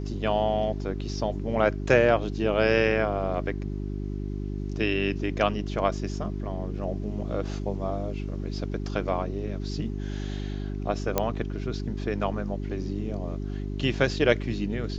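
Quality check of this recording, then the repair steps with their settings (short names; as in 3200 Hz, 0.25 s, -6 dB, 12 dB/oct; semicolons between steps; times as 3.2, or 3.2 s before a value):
hum 50 Hz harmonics 8 -32 dBFS
11.18 pop -8 dBFS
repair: de-click; de-hum 50 Hz, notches 8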